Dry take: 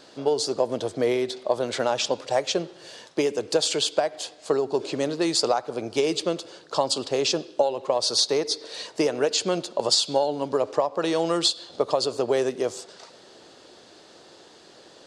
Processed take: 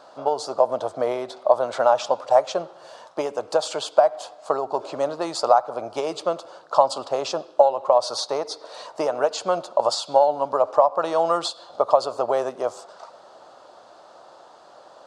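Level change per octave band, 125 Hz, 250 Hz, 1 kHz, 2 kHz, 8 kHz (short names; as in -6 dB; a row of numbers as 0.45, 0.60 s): -7.0, -7.0, +8.5, -2.5, -7.0 dB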